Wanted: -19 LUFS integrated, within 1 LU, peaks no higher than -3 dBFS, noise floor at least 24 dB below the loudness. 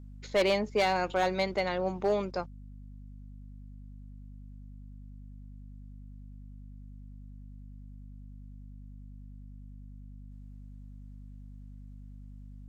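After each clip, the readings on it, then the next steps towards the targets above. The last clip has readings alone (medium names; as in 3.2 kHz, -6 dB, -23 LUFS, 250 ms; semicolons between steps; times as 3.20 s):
clipped samples 0.3%; clipping level -20.0 dBFS; hum 50 Hz; highest harmonic 250 Hz; hum level -44 dBFS; loudness -29.5 LUFS; peak level -20.0 dBFS; loudness target -19.0 LUFS
-> clip repair -20 dBFS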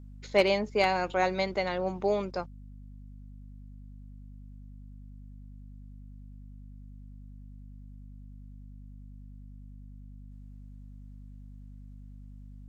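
clipped samples 0.0%; hum 50 Hz; highest harmonic 250 Hz; hum level -44 dBFS
-> de-hum 50 Hz, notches 5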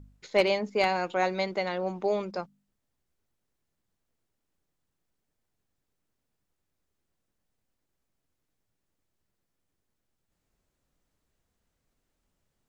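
hum not found; loudness -28.5 LUFS; peak level -10.5 dBFS; loudness target -19.0 LUFS
-> trim +9.5 dB; peak limiter -3 dBFS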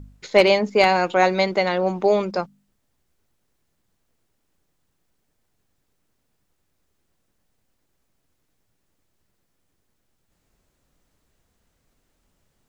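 loudness -19.5 LUFS; peak level -3.0 dBFS; noise floor -72 dBFS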